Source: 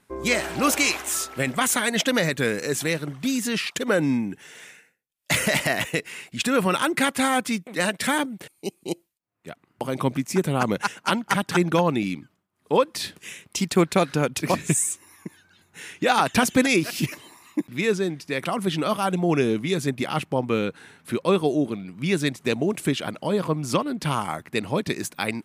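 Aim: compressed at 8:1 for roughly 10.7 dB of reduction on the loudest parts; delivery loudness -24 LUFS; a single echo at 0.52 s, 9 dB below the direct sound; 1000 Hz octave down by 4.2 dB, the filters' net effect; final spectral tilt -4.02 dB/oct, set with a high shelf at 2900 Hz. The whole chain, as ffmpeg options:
-af "equalizer=f=1k:t=o:g=-6.5,highshelf=f=2.9k:g=5.5,acompressor=threshold=-26dB:ratio=8,aecho=1:1:520:0.355,volume=6.5dB"

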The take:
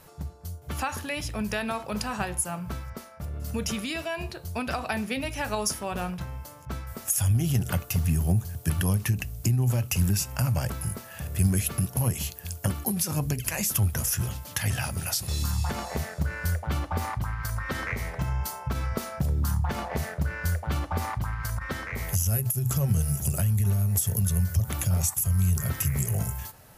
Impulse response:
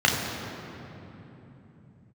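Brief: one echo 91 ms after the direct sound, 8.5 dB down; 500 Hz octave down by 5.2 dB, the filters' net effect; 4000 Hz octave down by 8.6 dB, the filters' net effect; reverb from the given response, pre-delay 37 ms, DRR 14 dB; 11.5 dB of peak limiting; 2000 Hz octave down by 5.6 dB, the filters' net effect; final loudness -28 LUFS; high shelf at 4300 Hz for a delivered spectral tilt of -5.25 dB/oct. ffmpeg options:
-filter_complex "[0:a]equalizer=f=500:t=o:g=-6.5,equalizer=f=2k:t=o:g=-4,equalizer=f=4k:t=o:g=-5.5,highshelf=f=4.3k:g=-8,alimiter=level_in=0.5dB:limit=-24dB:level=0:latency=1,volume=-0.5dB,aecho=1:1:91:0.376,asplit=2[a][b];[1:a]atrim=start_sample=2205,adelay=37[c];[b][c]afir=irnorm=-1:irlink=0,volume=-32.5dB[d];[a][d]amix=inputs=2:normalize=0,volume=5dB"

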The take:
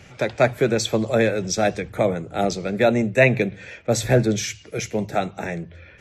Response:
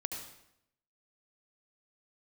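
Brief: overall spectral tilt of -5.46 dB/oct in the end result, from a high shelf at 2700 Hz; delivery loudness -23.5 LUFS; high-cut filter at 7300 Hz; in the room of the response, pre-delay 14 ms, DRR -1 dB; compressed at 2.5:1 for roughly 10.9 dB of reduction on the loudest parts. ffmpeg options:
-filter_complex "[0:a]lowpass=7.3k,highshelf=f=2.7k:g=-7,acompressor=threshold=-28dB:ratio=2.5,asplit=2[a][b];[1:a]atrim=start_sample=2205,adelay=14[c];[b][c]afir=irnorm=-1:irlink=0,volume=0dB[d];[a][d]amix=inputs=2:normalize=0,volume=3.5dB"

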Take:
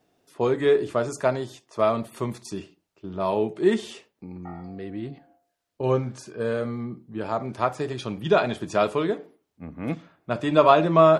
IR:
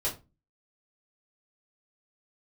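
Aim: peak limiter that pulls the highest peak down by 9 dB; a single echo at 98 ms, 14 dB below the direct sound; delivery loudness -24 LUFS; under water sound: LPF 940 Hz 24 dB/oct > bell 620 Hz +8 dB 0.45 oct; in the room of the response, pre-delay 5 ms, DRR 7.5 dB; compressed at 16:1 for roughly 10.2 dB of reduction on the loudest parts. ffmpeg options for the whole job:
-filter_complex "[0:a]acompressor=threshold=-20dB:ratio=16,alimiter=limit=-19dB:level=0:latency=1,aecho=1:1:98:0.2,asplit=2[a][b];[1:a]atrim=start_sample=2205,adelay=5[c];[b][c]afir=irnorm=-1:irlink=0,volume=-13.5dB[d];[a][d]amix=inputs=2:normalize=0,lowpass=f=940:w=0.5412,lowpass=f=940:w=1.3066,equalizer=f=620:t=o:w=0.45:g=8,volume=4dB"

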